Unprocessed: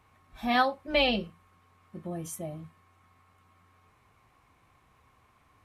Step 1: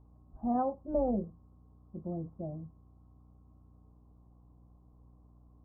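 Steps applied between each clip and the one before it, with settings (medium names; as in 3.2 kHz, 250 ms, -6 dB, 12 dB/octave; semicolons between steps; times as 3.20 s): Bessel low-pass 550 Hz, order 8; hum 60 Hz, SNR 21 dB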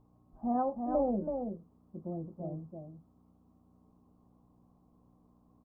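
peaking EQ 63 Hz -15 dB 1.1 oct; delay 329 ms -5.5 dB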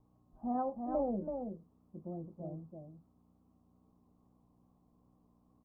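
vibrato 2.4 Hz 32 cents; trim -4 dB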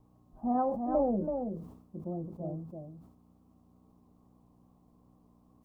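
decay stretcher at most 75 dB/s; trim +5.5 dB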